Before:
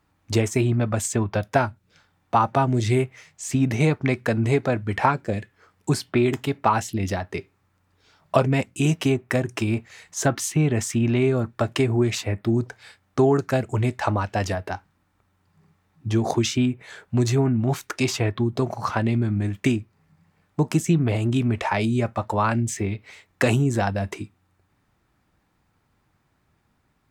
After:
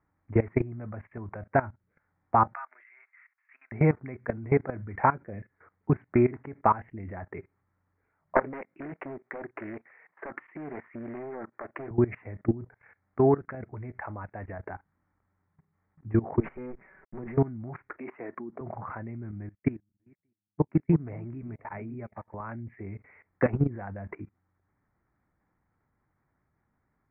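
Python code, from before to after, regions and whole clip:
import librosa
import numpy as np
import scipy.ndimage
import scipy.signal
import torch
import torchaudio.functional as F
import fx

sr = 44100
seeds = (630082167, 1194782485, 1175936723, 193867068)

y = fx.chain(x, sr, fx.highpass(hz=1300.0, slope=24),
    fx.high_shelf(hz=3500.0, db=-8.5), at=(2.54, 3.72))
y = fx.chain(y, sr, fx.highpass(hz=370.0, slope=12),
    fx.doppler_dist(depth_ms=0.57), at=(8.35, 11.91))
y = fx.chain(y, sr, fx.level_steps(step_db=9),
    fx.high_shelf(hz=2600.0, db=3.0), at=(12.67, 14.64))
y = fx.chain(y, sr, fx.lower_of_two(delay_ms=5.3),
    fx.peak_eq(hz=99.0, db=-9.5, octaves=0.58),
    fx.sample_gate(floor_db=-53.5), at=(16.4, 17.37))
y = fx.chain(y, sr, fx.highpass(hz=220.0, slope=24),
    fx.air_absorb(metres=140.0), at=(17.98, 18.61))
y = fx.chain(y, sr, fx.reverse_delay_fb(ms=293, feedback_pct=49, wet_db=-12),
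    fx.upward_expand(threshold_db=-39.0, expansion=2.5), at=(19.31, 22.34))
y = scipy.signal.sosfilt(scipy.signal.butter(12, 2200.0, 'lowpass', fs=sr, output='sos'), y)
y = fx.level_steps(y, sr, step_db=19)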